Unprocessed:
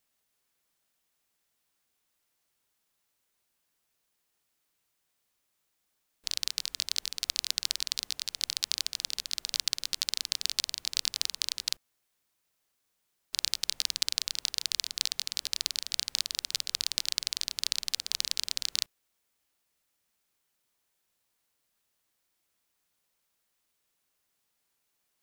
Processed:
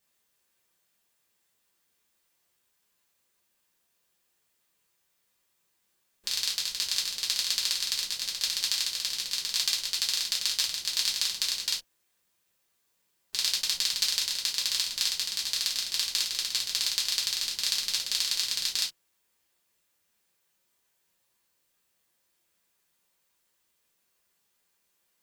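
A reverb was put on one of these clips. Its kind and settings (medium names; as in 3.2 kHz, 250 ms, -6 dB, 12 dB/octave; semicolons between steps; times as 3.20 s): gated-style reverb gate 90 ms falling, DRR -4 dB; trim -1.5 dB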